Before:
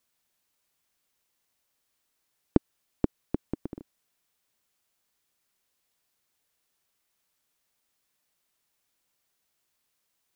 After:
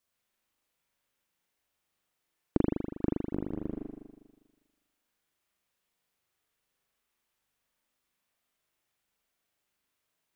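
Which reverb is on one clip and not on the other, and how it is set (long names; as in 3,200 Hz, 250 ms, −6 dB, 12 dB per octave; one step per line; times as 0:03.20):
spring reverb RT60 1.3 s, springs 40 ms, chirp 80 ms, DRR −3.5 dB
level −6 dB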